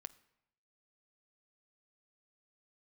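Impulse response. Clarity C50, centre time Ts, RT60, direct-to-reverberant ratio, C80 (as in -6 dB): 19.0 dB, 2 ms, 0.80 s, 13.5 dB, 21.5 dB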